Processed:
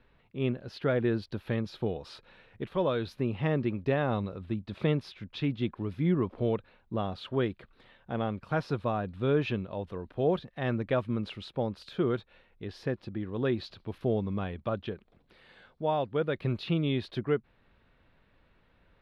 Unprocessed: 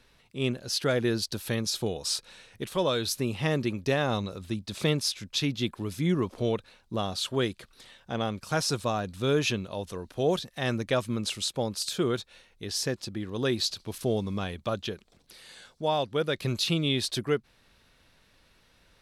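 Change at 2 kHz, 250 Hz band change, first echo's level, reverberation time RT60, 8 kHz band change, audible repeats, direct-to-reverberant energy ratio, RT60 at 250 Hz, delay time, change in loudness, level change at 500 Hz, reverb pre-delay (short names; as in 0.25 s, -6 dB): -4.5 dB, -0.5 dB, none, none, under -25 dB, none, none, none, none, -2.5 dB, -1.0 dB, none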